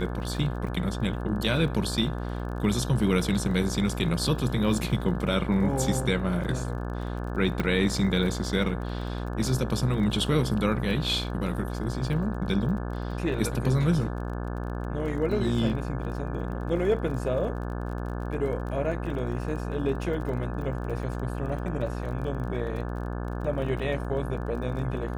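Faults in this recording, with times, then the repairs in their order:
mains buzz 60 Hz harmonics 29 −32 dBFS
surface crackle 29 per second −37 dBFS
0:07.60: click −15 dBFS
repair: click removal
hum removal 60 Hz, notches 29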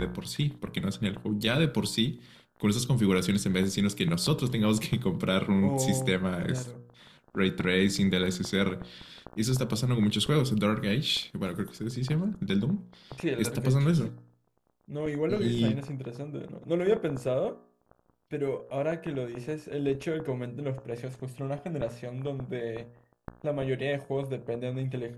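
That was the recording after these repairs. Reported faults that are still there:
none of them is left

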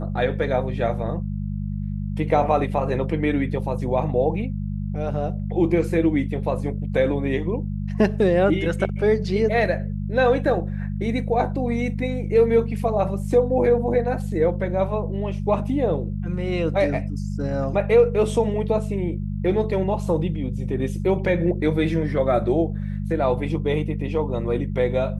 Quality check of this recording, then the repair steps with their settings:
mains hum 50 Hz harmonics 4 −27 dBFS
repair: hum removal 50 Hz, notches 4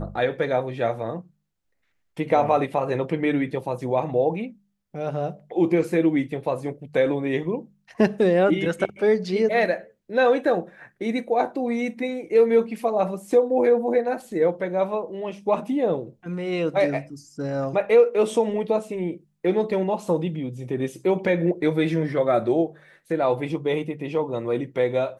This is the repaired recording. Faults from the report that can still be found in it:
none of them is left

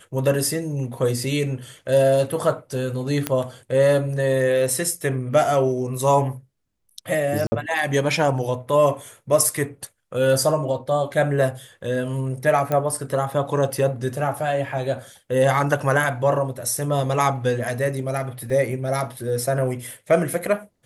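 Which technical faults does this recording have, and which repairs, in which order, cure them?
0:03.27: click −6 dBFS
0:07.47–0:07.52: drop-out 50 ms
0:12.72: click −11 dBFS
0:18.50: drop-out 2.7 ms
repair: click removal
repair the gap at 0:07.47, 50 ms
repair the gap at 0:18.50, 2.7 ms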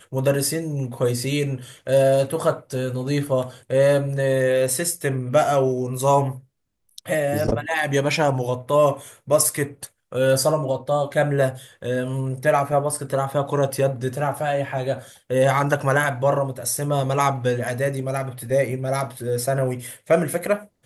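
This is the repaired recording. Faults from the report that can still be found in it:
none of them is left

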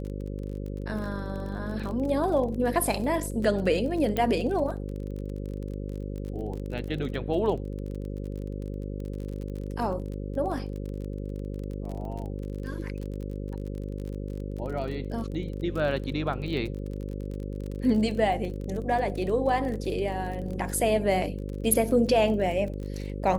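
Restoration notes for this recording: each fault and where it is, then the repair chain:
mains buzz 50 Hz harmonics 11 −34 dBFS
surface crackle 33 per second −34 dBFS
0:04.17: click −15 dBFS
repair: click removal
hum removal 50 Hz, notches 11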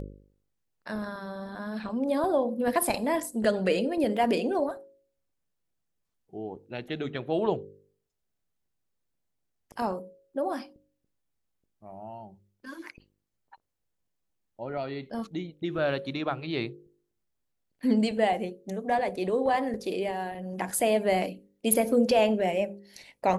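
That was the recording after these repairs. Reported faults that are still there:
0:04.17: click

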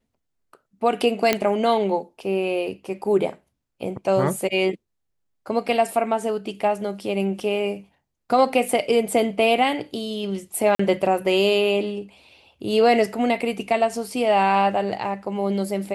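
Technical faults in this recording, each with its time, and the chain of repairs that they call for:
0:01.33: click −4 dBFS
0:10.75–0:10.79: drop-out 44 ms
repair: click removal
repair the gap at 0:10.75, 44 ms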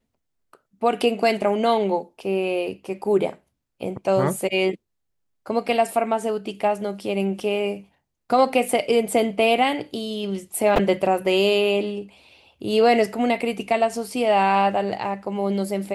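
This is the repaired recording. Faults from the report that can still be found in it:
none of them is left

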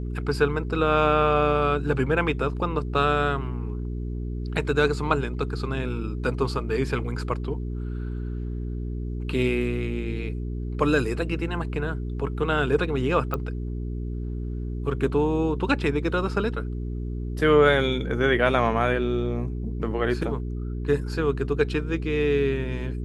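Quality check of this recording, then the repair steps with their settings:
mains hum 60 Hz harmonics 7 −30 dBFS
0:13.34: click −15 dBFS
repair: click removal
hum removal 60 Hz, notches 7

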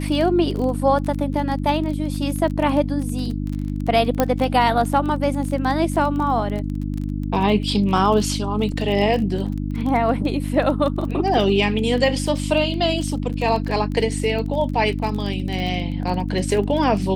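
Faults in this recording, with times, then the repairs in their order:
surface crackle 22 per second −26 dBFS
mains hum 50 Hz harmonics 6 −25 dBFS
0:04.20: click −4 dBFS
0:08.72: drop-out 3 ms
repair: click removal
hum removal 50 Hz, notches 6
repair the gap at 0:08.72, 3 ms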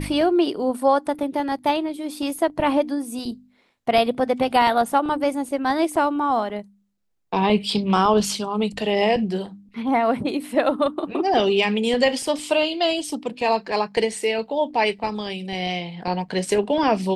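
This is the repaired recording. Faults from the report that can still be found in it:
none of them is left

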